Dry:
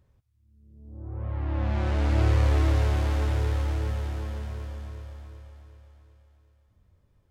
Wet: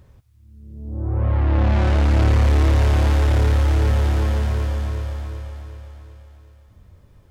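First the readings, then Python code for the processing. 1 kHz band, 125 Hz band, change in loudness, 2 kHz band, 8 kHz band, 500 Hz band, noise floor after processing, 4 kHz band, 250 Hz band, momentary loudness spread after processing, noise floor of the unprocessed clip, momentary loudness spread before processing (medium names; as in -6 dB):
+8.0 dB, +8.5 dB, +7.5 dB, +8.0 dB, no reading, +7.5 dB, -52 dBFS, +8.0 dB, +8.5 dB, 16 LU, -66 dBFS, 19 LU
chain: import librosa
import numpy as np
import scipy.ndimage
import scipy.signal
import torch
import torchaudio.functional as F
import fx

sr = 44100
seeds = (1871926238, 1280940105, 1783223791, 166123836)

p1 = fx.rider(x, sr, range_db=5, speed_s=0.5)
p2 = x + (p1 * librosa.db_to_amplitude(1.5))
p3 = 10.0 ** (-15.0 / 20.0) * np.tanh(p2 / 10.0 ** (-15.0 / 20.0))
y = p3 * librosa.db_to_amplitude(4.5)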